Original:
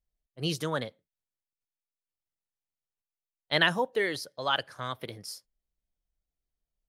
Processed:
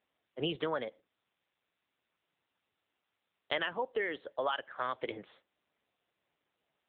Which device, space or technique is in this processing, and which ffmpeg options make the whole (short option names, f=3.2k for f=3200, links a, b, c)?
voicemail: -af "highpass=310,lowpass=3.2k,acompressor=threshold=-38dB:ratio=8,volume=8.5dB" -ar 8000 -c:a libopencore_amrnb -b:a 7950